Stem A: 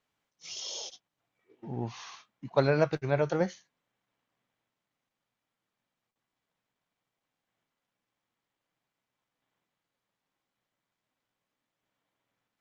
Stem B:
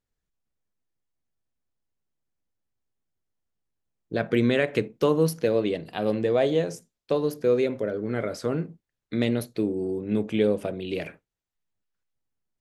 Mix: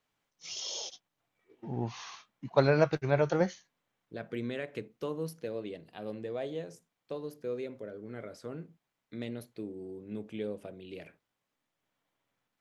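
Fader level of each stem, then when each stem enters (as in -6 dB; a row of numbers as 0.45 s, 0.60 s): +0.5 dB, -14.5 dB; 0.00 s, 0.00 s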